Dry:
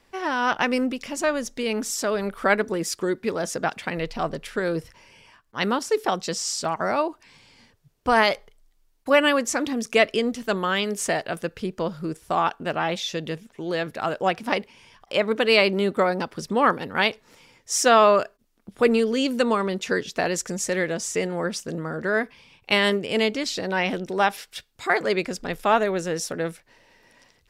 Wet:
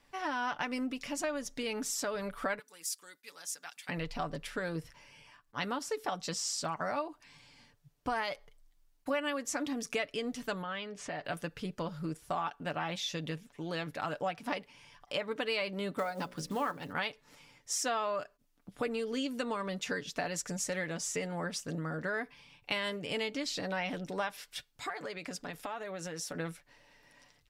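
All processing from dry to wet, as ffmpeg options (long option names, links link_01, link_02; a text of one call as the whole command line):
ffmpeg -i in.wav -filter_complex "[0:a]asettb=1/sr,asplit=3[link_01][link_02][link_03];[link_01]atrim=end=2.594[link_04];[link_02]atrim=start=2.59:end=3.89,asetpts=PTS-STARTPTS,afade=type=in:duration=0.004:curve=qsin,afade=type=out:start_time=1.296:duration=0.004:curve=qsin,agate=range=-33dB:threshold=-43dB:ratio=3:release=100:detection=peak,aderivative,bandreject=frequency=640:width=9.6[link_05];[link_03]atrim=start=3.886[link_06];[link_04][link_05]acrossfade=duration=0.004:curve1=hsin:curve2=qsin[link_07];[link_07][link_06]acrossfade=duration=0.004:curve1=qsin:curve2=hsin,asettb=1/sr,asplit=3[link_08][link_09][link_10];[link_08]atrim=end=10.624[link_11];[link_09]atrim=start=10.62:end=11.25,asetpts=PTS-STARTPTS,afade=type=in:duration=0.004:curve=qsin,afade=type=out:start_time=0.626:duration=0.004:curve=qsin,lowpass=3500,acompressor=threshold=-32dB:ratio=2.5:attack=3.2:release=140:knee=1:detection=peak[link_12];[link_10]atrim=start=11.246[link_13];[link_11][link_12]acrossfade=duration=0.004:curve1=hsin:curve2=qsin[link_14];[link_14][link_13]acrossfade=duration=0.004:curve1=qsin:curve2=hsin,asettb=1/sr,asplit=3[link_15][link_16][link_17];[link_15]atrim=end=15.984[link_18];[link_16]atrim=start=15.98:end=16.93,asetpts=PTS-STARTPTS,afade=type=in:duration=0.004:curve=qsin,afade=type=out:start_time=0.946:duration=0.004:curve=qsin,bandreject=frequency=60:width_type=h:width=6,bandreject=frequency=120:width_type=h:width=6,bandreject=frequency=180:width_type=h:width=6,bandreject=frequency=240:width_type=h:width=6,bandreject=frequency=300:width_type=h:width=6,bandreject=frequency=360:width_type=h:width=6,bandreject=frequency=420:width_type=h:width=6,bandreject=frequency=480:width_type=h:width=6,bandreject=frequency=540:width_type=h:width=6,bandreject=frequency=600:width_type=h:width=6,acrusher=bits=6:mode=log:mix=0:aa=0.000001[link_19];[link_17]atrim=start=16.926[link_20];[link_18][link_19]acrossfade=duration=0.004:curve1=hsin:curve2=qsin[link_21];[link_21][link_20]acrossfade=duration=0.004:curve1=qsin:curve2=hsin,asettb=1/sr,asplit=3[link_22][link_23][link_24];[link_22]atrim=end=24.894[link_25];[link_23]atrim=start=24.89:end=26.35,asetpts=PTS-STARTPTS,afade=type=in:duration=0.004:curve=qsin,afade=type=out:start_time=1.456:duration=0.004:curve=qsin,highpass=frequency=170:poles=1,acompressor=threshold=-29dB:ratio=10:attack=3.2:release=140:knee=1:detection=peak[link_26];[link_24]atrim=start=26.346[link_27];[link_25][link_26]acrossfade=duration=0.004:curve1=hsin:curve2=qsin[link_28];[link_28][link_27]acrossfade=duration=0.004:curve1=qsin:curve2=hsin,equalizer=frequency=400:width_type=o:width=0.4:gain=-7,aecho=1:1:6.9:0.46,acompressor=threshold=-26dB:ratio=4,volume=-6dB" out.wav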